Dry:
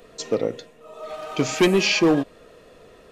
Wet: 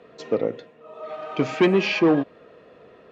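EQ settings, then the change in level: BPF 110–2600 Hz; 0.0 dB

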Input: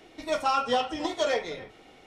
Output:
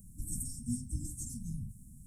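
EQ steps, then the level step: brick-wall FIR band-stop 290–1800 Hz; Chebyshev band-stop 530–8400 Hz, order 4; fixed phaser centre 670 Hz, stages 4; +16.0 dB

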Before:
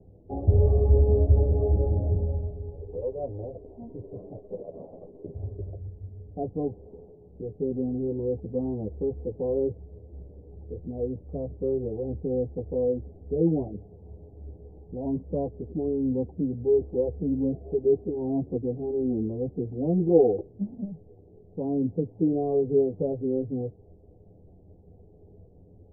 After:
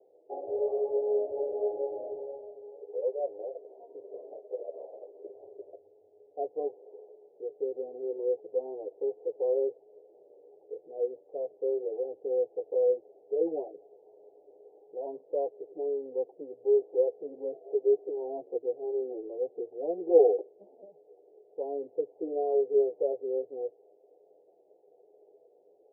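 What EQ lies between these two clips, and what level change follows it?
HPF 400 Hz 24 dB/oct; air absorption 450 m; fixed phaser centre 550 Hz, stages 4; +3.0 dB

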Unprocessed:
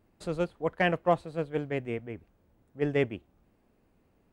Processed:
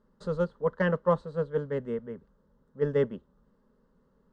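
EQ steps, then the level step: air absorption 130 m; fixed phaser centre 480 Hz, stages 8; +4.0 dB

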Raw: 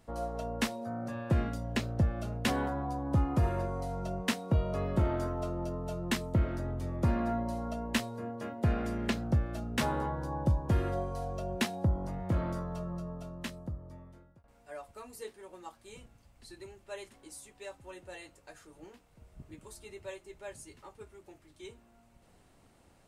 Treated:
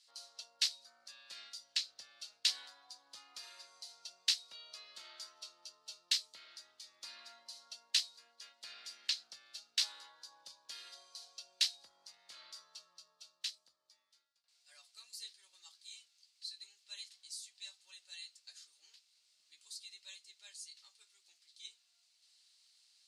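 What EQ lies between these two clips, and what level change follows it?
ladder band-pass 4900 Hz, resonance 60%; +15.0 dB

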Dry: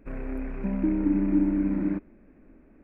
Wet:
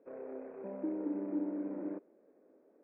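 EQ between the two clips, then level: ladder band-pass 560 Hz, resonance 50%; +5.0 dB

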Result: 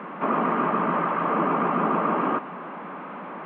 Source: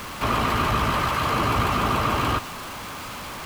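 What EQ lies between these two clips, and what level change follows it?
Gaussian blur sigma 4.9 samples; elliptic high-pass 170 Hz, stop band 40 dB; +3.0 dB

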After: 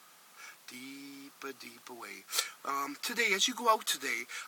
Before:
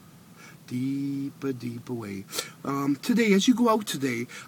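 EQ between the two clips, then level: HPF 840 Hz 12 dB/oct; 0.0 dB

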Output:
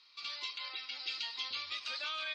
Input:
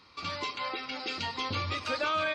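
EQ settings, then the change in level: band-pass 3900 Hz, Q 1.6; 0.0 dB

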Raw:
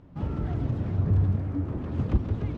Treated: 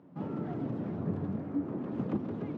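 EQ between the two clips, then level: HPF 170 Hz 24 dB/oct; high shelf 2000 Hz -12 dB; 0.0 dB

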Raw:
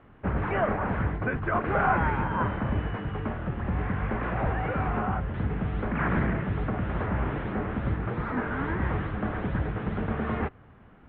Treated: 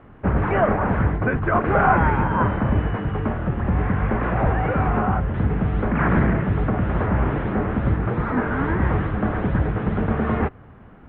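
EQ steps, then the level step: high shelf 2300 Hz -7.5 dB; +8.0 dB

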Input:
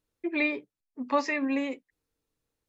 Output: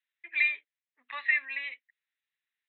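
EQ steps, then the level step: resonant high-pass 1900 Hz, resonance Q 4; Chebyshev low-pass 4000 Hz, order 10; high shelf 2600 Hz +7.5 dB; -7.0 dB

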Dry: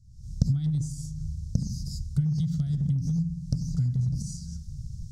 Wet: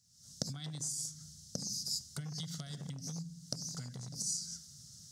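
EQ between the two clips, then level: HPF 640 Hz 12 dB/oct; +7.5 dB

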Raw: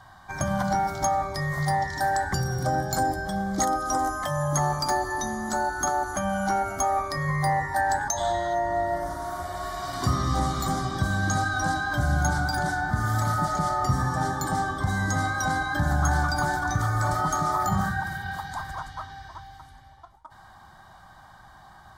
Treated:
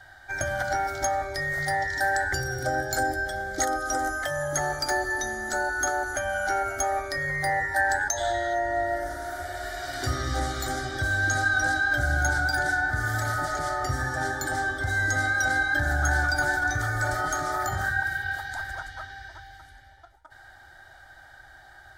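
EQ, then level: bell 1500 Hz +14 dB 0.99 oct; fixed phaser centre 450 Hz, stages 4; 0.0 dB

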